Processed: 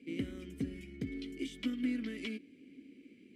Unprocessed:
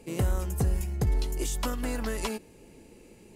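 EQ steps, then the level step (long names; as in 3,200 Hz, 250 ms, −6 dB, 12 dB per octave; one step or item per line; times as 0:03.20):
formant filter i
high-pass filter 47 Hz
notch filter 6,800 Hz, Q 12
+6.5 dB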